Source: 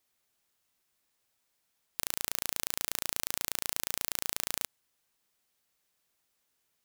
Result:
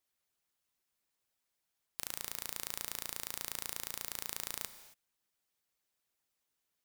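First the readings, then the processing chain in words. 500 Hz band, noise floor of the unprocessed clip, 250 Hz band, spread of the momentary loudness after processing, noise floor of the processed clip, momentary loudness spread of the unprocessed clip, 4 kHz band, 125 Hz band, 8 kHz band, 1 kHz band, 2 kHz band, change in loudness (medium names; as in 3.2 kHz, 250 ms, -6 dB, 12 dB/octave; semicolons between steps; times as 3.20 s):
-6.5 dB, -78 dBFS, -6.5 dB, 6 LU, -85 dBFS, 4 LU, -6.5 dB, -6.5 dB, -6.5 dB, -6.0 dB, -6.5 dB, -6.5 dB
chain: harmonic-percussive split harmonic -8 dB; gated-style reverb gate 300 ms flat, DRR 11 dB; trim -4.5 dB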